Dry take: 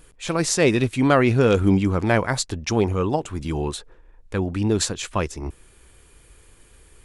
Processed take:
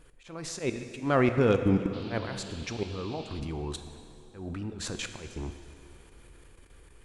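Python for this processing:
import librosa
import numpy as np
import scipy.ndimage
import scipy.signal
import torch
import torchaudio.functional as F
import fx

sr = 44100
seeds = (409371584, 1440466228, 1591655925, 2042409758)

y = fx.high_shelf(x, sr, hz=5100.0, db=-9.5)
y = fx.level_steps(y, sr, step_db=18)
y = fx.auto_swell(y, sr, attack_ms=154.0)
y = fx.rider(y, sr, range_db=5, speed_s=2.0)
y = fx.dmg_noise_band(y, sr, seeds[0], low_hz=2400.0, high_hz=4600.0, level_db=-47.0, at=(1.92, 3.39), fade=0.02)
y = fx.rev_plate(y, sr, seeds[1], rt60_s=2.8, hf_ratio=0.85, predelay_ms=0, drr_db=7.5)
y = y * 10.0 ** (-4.0 / 20.0)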